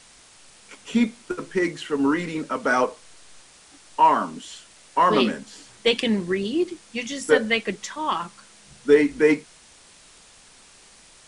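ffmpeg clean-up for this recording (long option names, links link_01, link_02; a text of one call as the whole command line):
ffmpeg -i in.wav -af "afwtdn=0.004" out.wav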